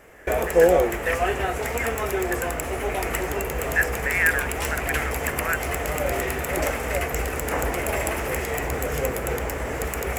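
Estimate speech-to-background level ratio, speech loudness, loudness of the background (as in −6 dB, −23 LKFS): −3.0 dB, −28.0 LKFS, −25.0 LKFS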